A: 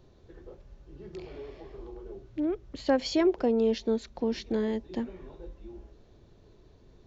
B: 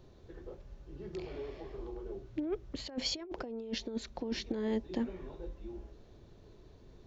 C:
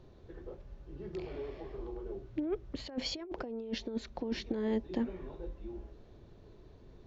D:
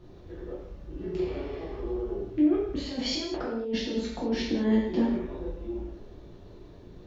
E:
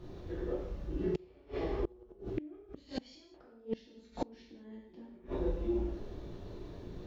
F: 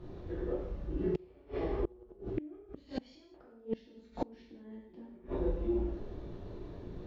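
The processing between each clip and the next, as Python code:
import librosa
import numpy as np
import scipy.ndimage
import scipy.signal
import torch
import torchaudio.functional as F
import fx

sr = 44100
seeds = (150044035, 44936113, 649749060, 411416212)

y1 = fx.over_compress(x, sr, threshold_db=-30.0, ratio=-0.5)
y1 = y1 * librosa.db_to_amplitude(-4.0)
y2 = fx.high_shelf(y1, sr, hz=6100.0, db=-12.0)
y2 = y2 * librosa.db_to_amplitude(1.0)
y3 = fx.rev_gated(y2, sr, seeds[0], gate_ms=250, shape='falling', drr_db=-7.0)
y4 = fx.gate_flip(y3, sr, shuts_db=-24.0, range_db=-28)
y4 = y4 * librosa.db_to_amplitude(2.0)
y5 = fx.high_shelf(y4, sr, hz=4000.0, db=-11.5)
y5 = y5 * librosa.db_to_amplitude(1.0)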